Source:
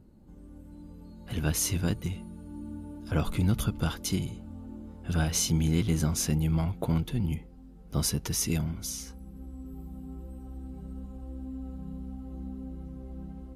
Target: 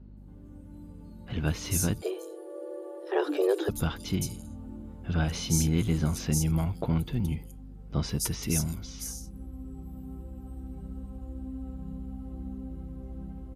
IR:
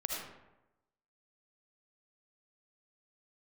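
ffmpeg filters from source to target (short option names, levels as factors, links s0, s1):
-filter_complex "[0:a]aeval=exprs='val(0)+0.00447*(sin(2*PI*50*n/s)+sin(2*PI*2*50*n/s)/2+sin(2*PI*3*50*n/s)/3+sin(2*PI*4*50*n/s)/4+sin(2*PI*5*50*n/s)/5)':c=same,asplit=3[s0][s1][s2];[s0]afade=t=out:st=2.01:d=0.02[s3];[s1]afreqshift=280,afade=t=in:st=2.01:d=0.02,afade=t=out:st=3.68:d=0.02[s4];[s2]afade=t=in:st=3.68:d=0.02[s5];[s3][s4][s5]amix=inputs=3:normalize=0,acrossover=split=4900[s6][s7];[s7]adelay=170[s8];[s6][s8]amix=inputs=2:normalize=0"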